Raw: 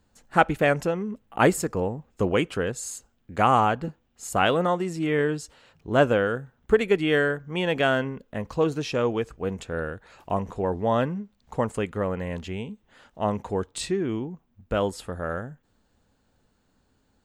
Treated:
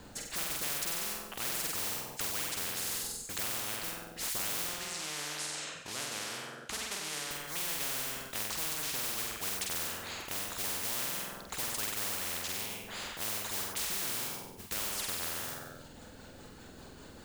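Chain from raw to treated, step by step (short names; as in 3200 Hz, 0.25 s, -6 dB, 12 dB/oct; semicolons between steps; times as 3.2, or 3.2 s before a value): reverb removal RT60 0.64 s; compressor 2:1, threshold -38 dBFS, peak gain reduction 14 dB; rotary speaker horn 0.9 Hz, later 5 Hz, at 13.01; modulation noise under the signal 21 dB; 4.64–7.31 BPF 340–7100 Hz; flutter echo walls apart 8.1 m, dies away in 0.72 s; spectral compressor 10:1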